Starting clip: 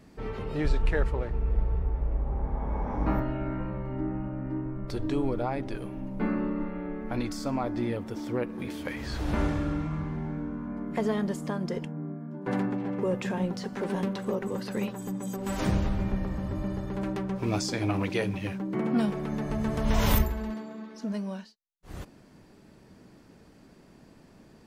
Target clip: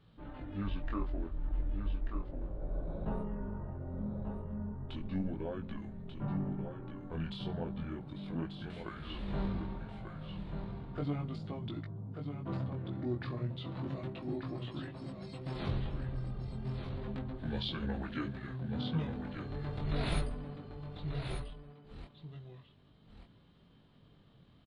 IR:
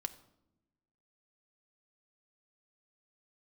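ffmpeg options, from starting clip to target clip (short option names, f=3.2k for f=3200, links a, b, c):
-filter_complex "[0:a]highshelf=f=7.3k:t=q:w=3:g=-8.5,asetrate=29433,aresample=44100,atempo=1.49831,flanger=delay=18:depth=6.7:speed=0.34,asplit=2[a][b];[b]aecho=0:1:1188:0.447[c];[a][c]amix=inputs=2:normalize=0,volume=-6dB"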